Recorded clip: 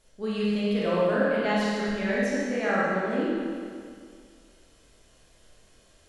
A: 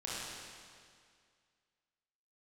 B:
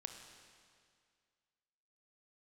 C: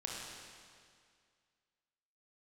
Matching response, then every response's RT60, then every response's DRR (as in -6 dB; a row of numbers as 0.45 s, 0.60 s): A; 2.1 s, 2.1 s, 2.1 s; -8.0 dB, 5.0 dB, -3.0 dB